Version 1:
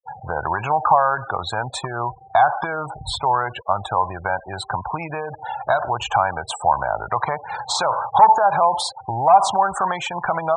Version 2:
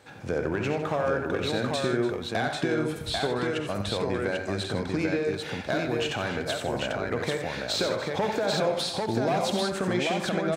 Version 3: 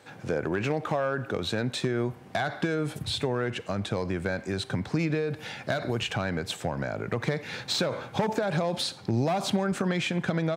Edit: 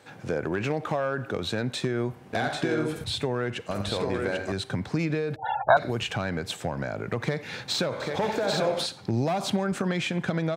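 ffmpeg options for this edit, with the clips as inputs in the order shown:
-filter_complex "[1:a]asplit=3[a][b][c];[2:a]asplit=5[d][e][f][g][h];[d]atrim=end=2.332[i];[a]atrim=start=2.328:end=3.042[j];[e]atrim=start=3.038:end=3.712[k];[b]atrim=start=3.708:end=4.522[l];[f]atrim=start=4.518:end=5.362[m];[0:a]atrim=start=5.358:end=5.772[n];[g]atrim=start=5.768:end=8.002[o];[c]atrim=start=7.998:end=8.862[p];[h]atrim=start=8.858[q];[i][j]acrossfade=d=0.004:c1=hsin:c2=hsin[r];[r][k]acrossfade=d=0.004:c1=hsin:c2=hsin[s];[s][l]acrossfade=d=0.004:c1=hsin:c2=hsin[t];[t][m]acrossfade=d=0.004:c1=hsin:c2=hsin[u];[u][n]acrossfade=d=0.004:c1=hsin:c2=hsin[v];[v][o]acrossfade=d=0.004:c1=hsin:c2=hsin[w];[w][p]acrossfade=d=0.004:c1=hsin:c2=hsin[x];[x][q]acrossfade=d=0.004:c1=hsin:c2=hsin"

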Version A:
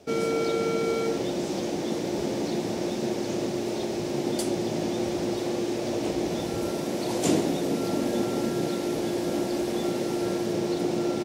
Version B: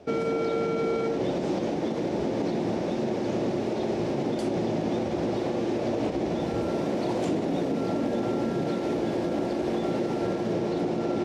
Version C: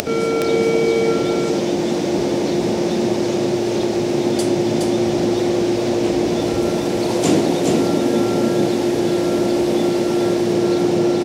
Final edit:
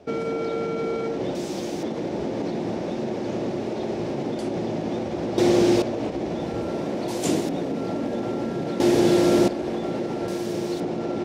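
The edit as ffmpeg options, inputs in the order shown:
-filter_complex "[0:a]asplit=3[a][b][c];[2:a]asplit=2[d][e];[1:a]asplit=6[f][g][h][i][j][k];[f]atrim=end=1.352[l];[a]atrim=start=1.348:end=1.832[m];[g]atrim=start=1.828:end=5.382[n];[d]atrim=start=5.378:end=5.822[o];[h]atrim=start=5.818:end=7.082[p];[b]atrim=start=7.078:end=7.492[q];[i]atrim=start=7.488:end=8.802[r];[e]atrim=start=8.798:end=9.482[s];[j]atrim=start=9.478:end=10.282[t];[c]atrim=start=10.278:end=10.802[u];[k]atrim=start=10.798[v];[l][m]acrossfade=d=0.004:c1=hsin:c2=hsin[w];[w][n]acrossfade=d=0.004:c1=hsin:c2=hsin[x];[x][o]acrossfade=d=0.004:c1=hsin:c2=hsin[y];[y][p]acrossfade=d=0.004:c1=hsin:c2=hsin[z];[z][q]acrossfade=d=0.004:c1=hsin:c2=hsin[aa];[aa][r]acrossfade=d=0.004:c1=hsin:c2=hsin[ab];[ab][s]acrossfade=d=0.004:c1=hsin:c2=hsin[ac];[ac][t]acrossfade=d=0.004:c1=hsin:c2=hsin[ad];[ad][u]acrossfade=d=0.004:c1=hsin:c2=hsin[ae];[ae][v]acrossfade=d=0.004:c1=hsin:c2=hsin"

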